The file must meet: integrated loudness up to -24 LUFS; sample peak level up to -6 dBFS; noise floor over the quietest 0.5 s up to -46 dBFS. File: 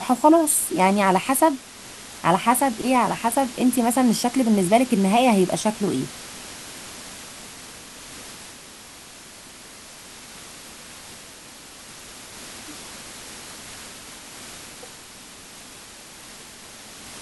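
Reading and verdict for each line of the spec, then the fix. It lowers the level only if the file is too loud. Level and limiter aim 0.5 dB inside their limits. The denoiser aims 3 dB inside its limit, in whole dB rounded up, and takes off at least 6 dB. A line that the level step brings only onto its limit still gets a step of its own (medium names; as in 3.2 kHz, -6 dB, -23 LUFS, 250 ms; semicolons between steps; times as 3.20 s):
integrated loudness -20.0 LUFS: fail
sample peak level -3.5 dBFS: fail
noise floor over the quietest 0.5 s -43 dBFS: fail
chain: trim -4.5 dB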